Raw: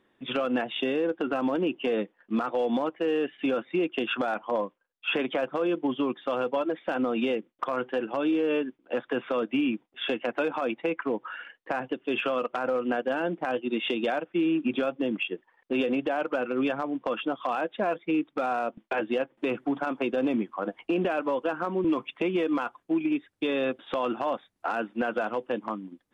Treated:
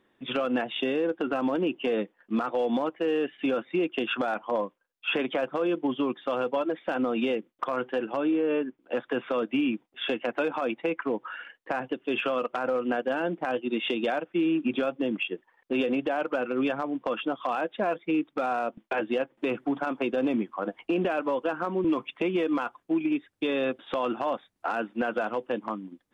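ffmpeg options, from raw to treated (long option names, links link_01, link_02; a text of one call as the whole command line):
ffmpeg -i in.wav -filter_complex "[0:a]asettb=1/sr,asplit=3[link_01][link_02][link_03];[link_01]atrim=end=8.204[link_04];[link_02]atrim=start=8.2:end=8.78,asetpts=PTS-STARTPTS,afade=type=in:duration=0.004:curve=qsin,afade=type=out:start_time=0.576:duration=0.004:curve=qsin,lowpass=2400[link_05];[link_03]atrim=start=8.776[link_06];[link_04][link_05]acrossfade=duration=0.004:curve1=hsin:curve2=qsin[link_07];[link_07][link_06]acrossfade=duration=0.004:curve1=qsin:curve2=hsin" out.wav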